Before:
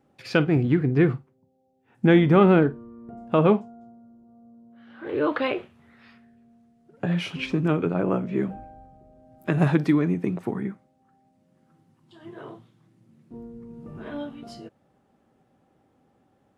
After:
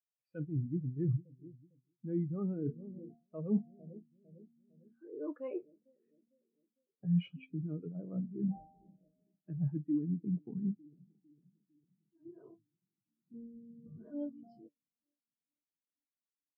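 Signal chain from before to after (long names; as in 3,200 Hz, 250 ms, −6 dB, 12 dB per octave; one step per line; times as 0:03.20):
dynamic equaliser 370 Hz, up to −4 dB, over −32 dBFS, Q 5.4
bucket-brigade delay 452 ms, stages 2,048, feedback 70%, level −22 dB
reversed playback
downward compressor 8 to 1, threshold −32 dBFS, peak gain reduction 19 dB
reversed playback
every bin expanded away from the loudest bin 2.5 to 1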